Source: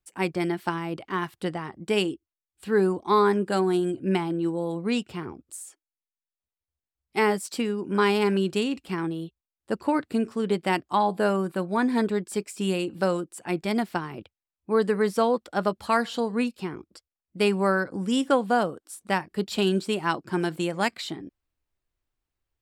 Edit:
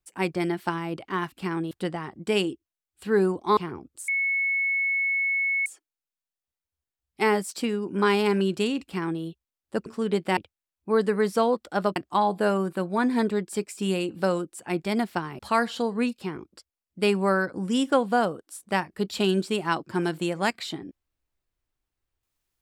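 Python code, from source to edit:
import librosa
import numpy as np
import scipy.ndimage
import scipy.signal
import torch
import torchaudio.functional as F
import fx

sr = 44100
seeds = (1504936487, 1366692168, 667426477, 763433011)

y = fx.edit(x, sr, fx.cut(start_s=3.18, length_s=1.93),
    fx.insert_tone(at_s=5.62, length_s=1.58, hz=2200.0, db=-22.0),
    fx.duplicate(start_s=8.79, length_s=0.39, to_s=1.32),
    fx.cut(start_s=9.82, length_s=0.42),
    fx.move(start_s=14.18, length_s=1.59, to_s=10.75), tone=tone)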